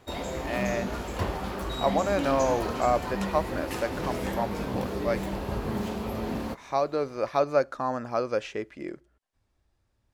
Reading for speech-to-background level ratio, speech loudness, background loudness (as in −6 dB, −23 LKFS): 3.0 dB, −29.5 LKFS, −32.5 LKFS